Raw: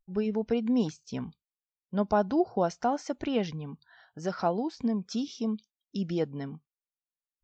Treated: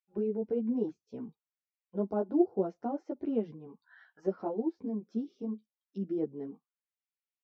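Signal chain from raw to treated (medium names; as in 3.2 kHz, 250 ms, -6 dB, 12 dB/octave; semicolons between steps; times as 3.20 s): auto-wah 350–2400 Hz, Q 2.2, down, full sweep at -32 dBFS; three-phase chorus; trim +4.5 dB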